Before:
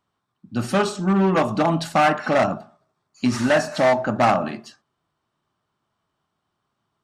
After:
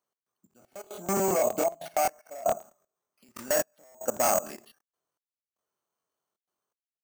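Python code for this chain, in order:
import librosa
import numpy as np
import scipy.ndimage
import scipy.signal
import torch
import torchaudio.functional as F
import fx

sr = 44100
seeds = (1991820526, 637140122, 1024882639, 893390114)

y = fx.block_float(x, sr, bits=7)
y = fx.peak_eq(y, sr, hz=490.0, db=10.5, octaves=0.84)
y = np.repeat(scipy.signal.resample_poly(y, 1, 6), 6)[:len(y)]
y = fx.high_shelf(y, sr, hz=3900.0, db=11.0)
y = fx.rider(y, sr, range_db=10, speed_s=2.0)
y = fx.small_body(y, sr, hz=(680.0, 2200.0), ring_ms=50, db=17, at=(0.57, 2.57), fade=0.02)
y = fx.step_gate(y, sr, bpm=116, pattern='x.xx...xxxxx', floor_db=-24.0, edge_ms=4.5)
y = fx.level_steps(y, sr, step_db=16)
y = fx.highpass(y, sr, hz=350.0, slope=6)
y = fx.buffer_crackle(y, sr, first_s=0.49, period_s=0.11, block=1024, kind='repeat')
y = y * librosa.db_to_amplitude(-6.5)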